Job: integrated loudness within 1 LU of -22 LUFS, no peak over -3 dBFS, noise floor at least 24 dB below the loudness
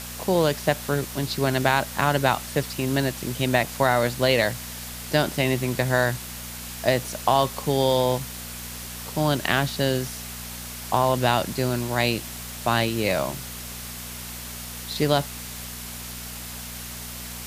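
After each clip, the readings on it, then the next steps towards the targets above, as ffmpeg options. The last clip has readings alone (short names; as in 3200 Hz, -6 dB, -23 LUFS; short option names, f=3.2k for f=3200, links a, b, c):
hum 60 Hz; harmonics up to 240 Hz; hum level -39 dBFS; noise floor -36 dBFS; noise floor target -49 dBFS; loudness -25.0 LUFS; peak -3.5 dBFS; loudness target -22.0 LUFS
-> -af "bandreject=f=60:t=h:w=4,bandreject=f=120:t=h:w=4,bandreject=f=180:t=h:w=4,bandreject=f=240:t=h:w=4"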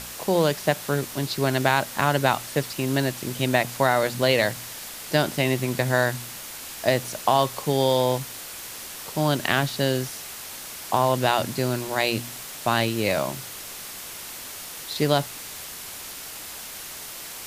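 hum none; noise floor -38 dBFS; noise floor target -49 dBFS
-> -af "afftdn=nr=11:nf=-38"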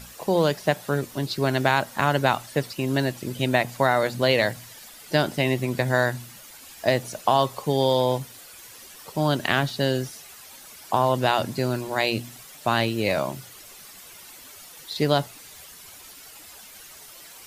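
noise floor -46 dBFS; noise floor target -48 dBFS
-> -af "afftdn=nr=6:nf=-46"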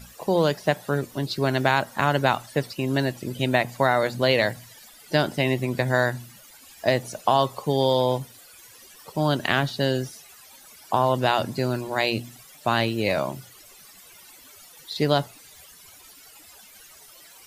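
noise floor -49 dBFS; loudness -24.0 LUFS; peak -4.0 dBFS; loudness target -22.0 LUFS
-> -af "volume=2dB,alimiter=limit=-3dB:level=0:latency=1"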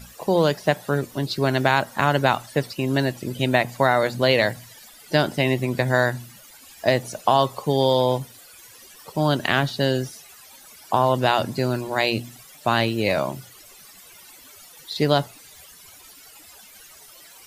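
loudness -22.0 LUFS; peak -3.0 dBFS; noise floor -47 dBFS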